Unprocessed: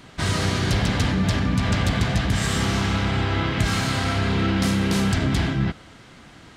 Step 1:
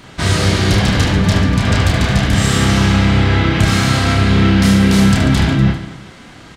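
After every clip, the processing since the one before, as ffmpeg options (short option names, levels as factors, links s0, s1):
-af "aecho=1:1:30|75|142.5|243.8|395.6:0.631|0.398|0.251|0.158|0.1,volume=2"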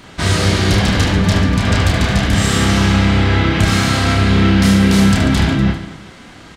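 -af "equalizer=f=130:w=6.6:g=-6"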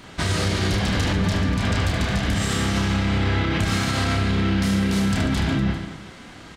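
-af "alimiter=limit=0.335:level=0:latency=1:release=108,volume=0.668"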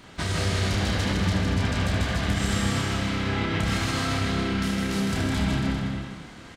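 -af "aecho=1:1:160|280|370|437.5|488.1:0.631|0.398|0.251|0.158|0.1,volume=0.562"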